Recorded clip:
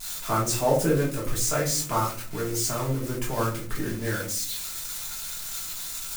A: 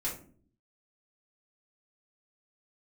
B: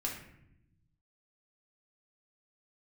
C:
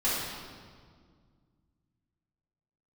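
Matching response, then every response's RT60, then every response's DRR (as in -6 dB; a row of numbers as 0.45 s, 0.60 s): A; 0.50 s, 0.80 s, 1.9 s; -7.0 dB, -2.0 dB, -11.0 dB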